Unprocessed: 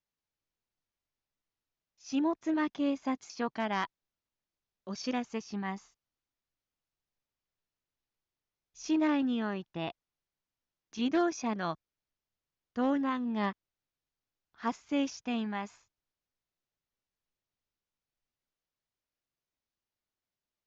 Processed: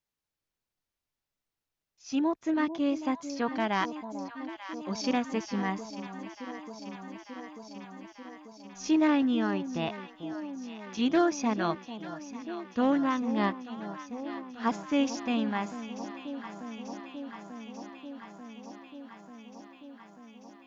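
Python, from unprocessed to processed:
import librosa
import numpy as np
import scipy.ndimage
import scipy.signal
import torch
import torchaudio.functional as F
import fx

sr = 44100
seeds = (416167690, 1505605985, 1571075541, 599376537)

p1 = fx.echo_alternate(x, sr, ms=445, hz=880.0, feedback_pct=86, wet_db=-11.0)
p2 = fx.rider(p1, sr, range_db=4, speed_s=2.0)
p3 = p1 + (p2 * librosa.db_to_amplitude(-0.5))
y = p3 * librosa.db_to_amplitude(-2.5)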